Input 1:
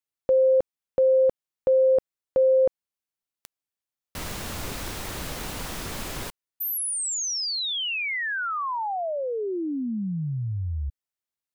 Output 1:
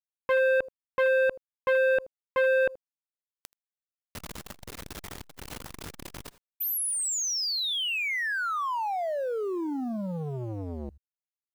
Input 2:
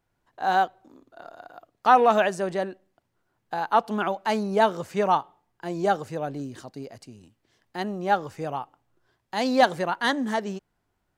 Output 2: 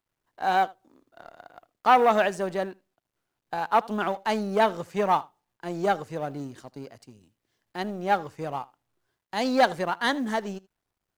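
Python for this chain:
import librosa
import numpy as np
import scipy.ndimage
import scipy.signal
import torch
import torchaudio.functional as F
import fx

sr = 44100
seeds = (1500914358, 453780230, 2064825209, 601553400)

y = fx.law_mismatch(x, sr, coded='A')
y = y + 10.0 ** (-23.0 / 20.0) * np.pad(y, (int(79 * sr / 1000.0), 0))[:len(y)]
y = fx.transformer_sat(y, sr, knee_hz=950.0)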